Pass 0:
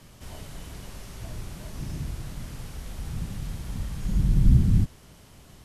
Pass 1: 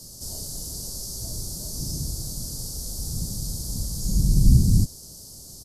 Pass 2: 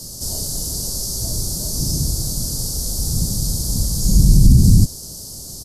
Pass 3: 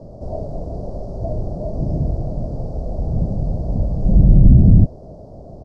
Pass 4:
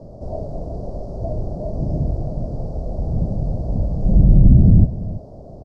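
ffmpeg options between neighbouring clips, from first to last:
ffmpeg -i in.wav -af "firequalizer=gain_entry='entry(510,0);entry(1000,-10);entry(2400,-25);entry(4600,15)':delay=0.05:min_phase=1,volume=2dB" out.wav
ffmpeg -i in.wav -af "alimiter=level_in=10.5dB:limit=-1dB:release=50:level=0:latency=1,volume=-1dB" out.wav
ffmpeg -i in.wav -af "lowpass=frequency=650:width_type=q:width=4.7,volume=1dB" out.wav
ffmpeg -i in.wav -filter_complex "[0:a]asplit=2[link_01][link_02];[link_02]adelay=332.4,volume=-16dB,highshelf=frequency=4000:gain=-7.48[link_03];[link_01][link_03]amix=inputs=2:normalize=0,volume=-1dB" out.wav

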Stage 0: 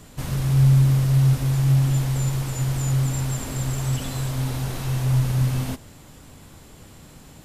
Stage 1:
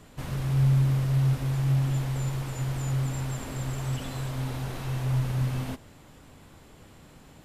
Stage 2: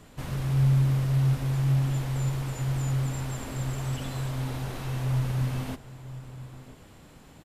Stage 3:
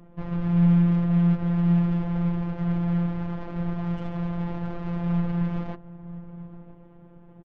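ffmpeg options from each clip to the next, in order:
ffmpeg -i in.wav -af "bass=frequency=250:gain=-3,treble=frequency=4000:gain=-7,volume=-3.5dB" out.wav
ffmpeg -i in.wav -filter_complex "[0:a]asplit=2[link_01][link_02];[link_02]adelay=991.3,volume=-15dB,highshelf=frequency=4000:gain=-22.3[link_03];[link_01][link_03]amix=inputs=2:normalize=0" out.wav
ffmpeg -i in.wav -af "aresample=8000,aresample=44100,adynamicsmooth=sensitivity=4:basefreq=750,afftfilt=real='hypot(re,im)*cos(PI*b)':imag='0':win_size=1024:overlap=0.75,volume=7dB" out.wav

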